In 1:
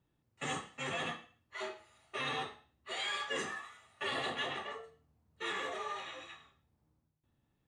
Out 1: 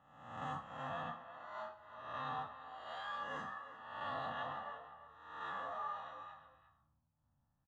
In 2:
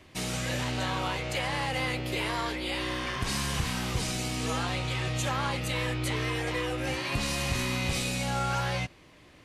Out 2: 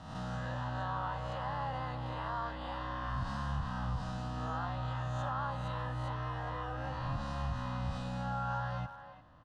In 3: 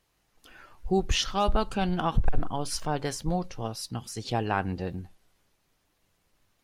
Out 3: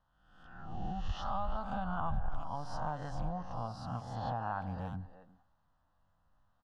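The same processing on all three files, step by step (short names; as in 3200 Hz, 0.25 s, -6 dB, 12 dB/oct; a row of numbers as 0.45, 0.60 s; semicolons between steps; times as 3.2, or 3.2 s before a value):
spectral swells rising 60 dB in 0.89 s; Chebyshev low-pass 1900 Hz, order 2; compressor 6:1, threshold -28 dBFS; fixed phaser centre 940 Hz, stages 4; speakerphone echo 0.35 s, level -11 dB; gain -2 dB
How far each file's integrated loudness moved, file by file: -6.0, -7.5, -9.5 LU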